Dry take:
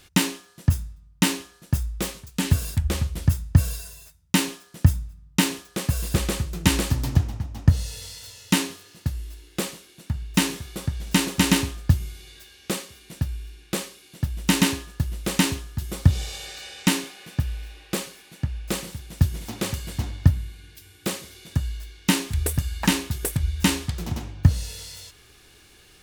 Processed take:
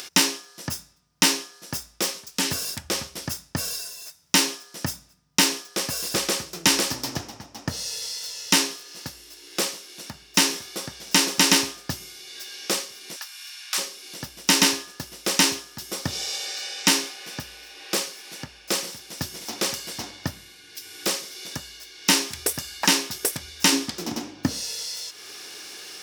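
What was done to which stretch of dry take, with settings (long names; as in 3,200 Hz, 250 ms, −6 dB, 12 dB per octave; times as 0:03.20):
0:13.16–0:13.78: high-pass filter 960 Hz 24 dB per octave
0:23.72–0:24.61: parametric band 270 Hz +11.5 dB
whole clip: parametric band 5,400 Hz +10 dB 0.43 octaves; upward compression, threshold −32 dBFS; high-pass filter 350 Hz 12 dB per octave; level +3 dB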